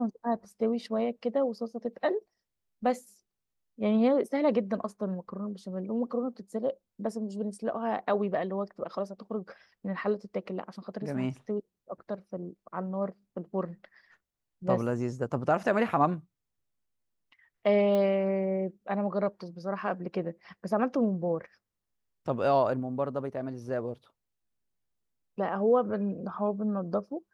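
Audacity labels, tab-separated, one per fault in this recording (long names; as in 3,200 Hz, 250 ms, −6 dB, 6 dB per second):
17.950000	17.950000	click −19 dBFS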